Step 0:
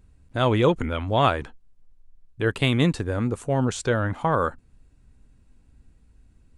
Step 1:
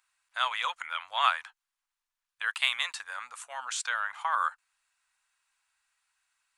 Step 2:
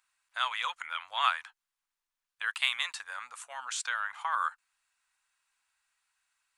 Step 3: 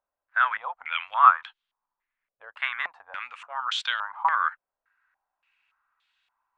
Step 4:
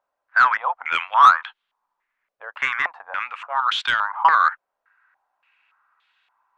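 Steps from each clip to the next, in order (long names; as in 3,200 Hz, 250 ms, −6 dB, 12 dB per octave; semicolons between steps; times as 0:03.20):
inverse Chebyshev high-pass filter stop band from 400 Hz, stop band 50 dB
dynamic equaliser 580 Hz, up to −5 dB, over −45 dBFS, Q 1.5; level −1.5 dB
low-pass on a step sequencer 3.5 Hz 580–3,400 Hz; level +2 dB
mid-hump overdrive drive 17 dB, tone 1,200 Hz, clips at −2.5 dBFS; level +2.5 dB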